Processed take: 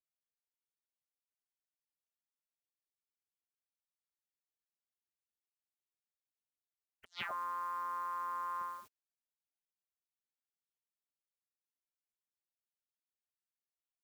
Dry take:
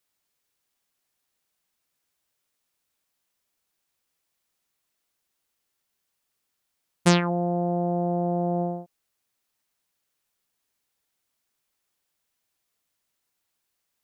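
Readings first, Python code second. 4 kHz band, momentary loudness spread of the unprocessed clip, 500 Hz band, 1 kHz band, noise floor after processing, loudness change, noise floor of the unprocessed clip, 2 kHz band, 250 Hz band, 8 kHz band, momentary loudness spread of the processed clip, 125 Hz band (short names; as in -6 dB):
-16.5 dB, 7 LU, -30.5 dB, -7.0 dB, under -85 dBFS, -14.5 dB, -79 dBFS, -11.5 dB, under -40 dB, under -20 dB, 7 LU, under -40 dB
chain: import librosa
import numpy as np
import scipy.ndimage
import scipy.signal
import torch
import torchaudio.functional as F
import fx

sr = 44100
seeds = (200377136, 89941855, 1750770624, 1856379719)

y = fx.spec_gate(x, sr, threshold_db=-25, keep='weak')
y = fx.over_compress(y, sr, threshold_db=-52.0, ratio=-0.5)
y = F.gain(torch.from_numpy(y), 9.0).numpy()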